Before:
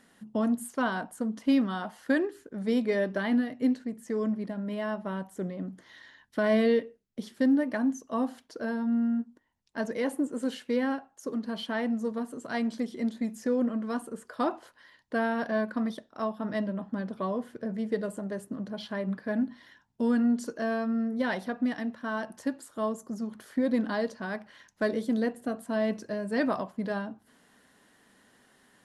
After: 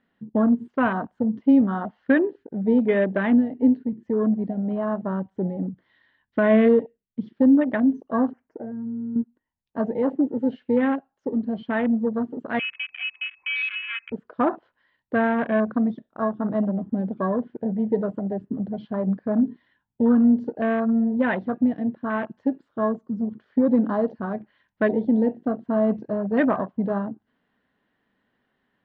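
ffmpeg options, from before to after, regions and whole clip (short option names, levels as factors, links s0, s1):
-filter_complex "[0:a]asettb=1/sr,asplit=3[s0][s1][s2];[s0]atrim=end=8.314[s3];[s1]atrim=start=8.31:end=9.16,asetpts=PTS-STARTPTS,afade=t=in:d=0.004:c=qsin,afade=t=out:st=0.846:d=0.004:c=qsin,asuperstop=centerf=3800:order=4:qfactor=0.85,acompressor=threshold=0.0158:ratio=12:attack=3.2:release=140:knee=1:detection=peak[s4];[s2]atrim=start=9.156[s5];[s3][s4]acrossfade=d=0.004:c1=hsin:c2=qsin[s6];[s6][s5]acrossfade=d=0.004:c1=qsin:c2=hsin,asettb=1/sr,asplit=3[s7][s8][s9];[s7]atrim=end=12.594[s10];[s8]atrim=start=12.59:end=14.12,asetpts=PTS-STARTPTS,afade=t=in:d=0.004:c=qsin,afade=t=out:st=1.526:d=0.004:c=qsin,lowpass=f=2400:t=q:w=0.5098,lowpass=f=2400:t=q:w=0.6013,lowpass=f=2400:t=q:w=0.9,lowpass=f=2400:t=q:w=2.563,afreqshift=-2800,acompressor=threshold=0.0126:ratio=1.5:attack=3.2:release=140:knee=1:detection=peak[s11];[s9]atrim=start=14.116[s12];[s10][s11]acrossfade=d=0.004:c1=hsin:c2=qsin[s13];[s13][s12]acrossfade=d=0.004:c1=qsin:c2=hsin,afwtdn=0.0178,lowpass=f=3400:w=0.5412,lowpass=f=3400:w=1.3066,lowshelf=f=200:g=4.5,volume=2"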